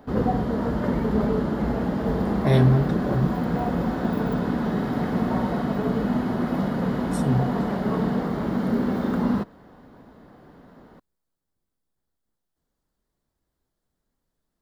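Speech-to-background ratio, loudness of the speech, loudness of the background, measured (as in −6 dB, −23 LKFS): 1.0 dB, −24.0 LKFS, −25.0 LKFS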